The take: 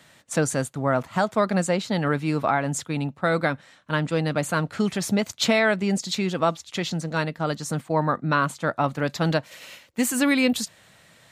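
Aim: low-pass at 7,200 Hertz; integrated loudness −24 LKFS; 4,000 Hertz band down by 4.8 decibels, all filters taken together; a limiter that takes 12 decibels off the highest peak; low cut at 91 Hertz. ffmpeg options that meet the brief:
ffmpeg -i in.wav -af "highpass=91,lowpass=7200,equalizer=frequency=4000:width_type=o:gain=-5.5,volume=7.5dB,alimiter=limit=-13dB:level=0:latency=1" out.wav

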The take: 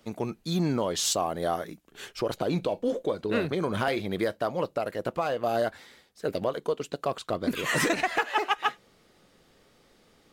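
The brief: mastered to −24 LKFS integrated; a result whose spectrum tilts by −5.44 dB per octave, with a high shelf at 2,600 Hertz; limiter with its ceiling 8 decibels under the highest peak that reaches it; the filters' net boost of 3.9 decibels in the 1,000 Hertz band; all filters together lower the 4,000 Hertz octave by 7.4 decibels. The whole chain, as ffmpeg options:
ffmpeg -i in.wav -af "equalizer=frequency=1000:width_type=o:gain=6.5,highshelf=frequency=2600:gain=-5,equalizer=frequency=4000:width_type=o:gain=-6,volume=6dB,alimiter=limit=-11.5dB:level=0:latency=1" out.wav

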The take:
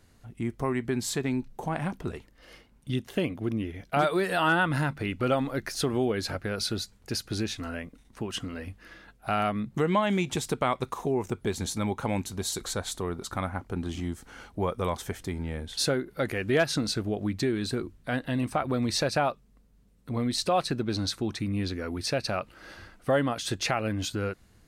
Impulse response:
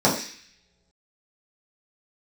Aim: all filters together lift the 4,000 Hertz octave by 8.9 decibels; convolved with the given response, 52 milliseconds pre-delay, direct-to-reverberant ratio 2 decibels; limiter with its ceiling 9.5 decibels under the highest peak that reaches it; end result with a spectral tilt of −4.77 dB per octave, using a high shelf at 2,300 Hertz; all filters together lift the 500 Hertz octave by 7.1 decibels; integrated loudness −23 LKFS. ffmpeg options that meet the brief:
-filter_complex "[0:a]equalizer=frequency=500:width_type=o:gain=8.5,highshelf=frequency=2300:gain=6.5,equalizer=frequency=4000:width_type=o:gain=4.5,alimiter=limit=-15.5dB:level=0:latency=1,asplit=2[link_01][link_02];[1:a]atrim=start_sample=2205,adelay=52[link_03];[link_02][link_03]afir=irnorm=-1:irlink=0,volume=-21dB[link_04];[link_01][link_04]amix=inputs=2:normalize=0"

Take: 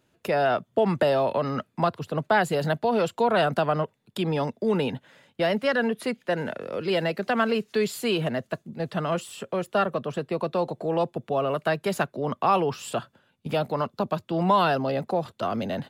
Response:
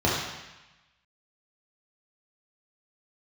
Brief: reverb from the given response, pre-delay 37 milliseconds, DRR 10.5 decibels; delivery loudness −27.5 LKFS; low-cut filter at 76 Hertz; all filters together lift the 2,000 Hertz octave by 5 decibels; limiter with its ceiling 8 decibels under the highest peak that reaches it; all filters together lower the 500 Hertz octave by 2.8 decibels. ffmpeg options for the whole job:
-filter_complex "[0:a]highpass=76,equalizer=frequency=500:width_type=o:gain=-4,equalizer=frequency=2000:width_type=o:gain=7,alimiter=limit=-16dB:level=0:latency=1,asplit=2[link_01][link_02];[1:a]atrim=start_sample=2205,adelay=37[link_03];[link_02][link_03]afir=irnorm=-1:irlink=0,volume=-26.5dB[link_04];[link_01][link_04]amix=inputs=2:normalize=0"

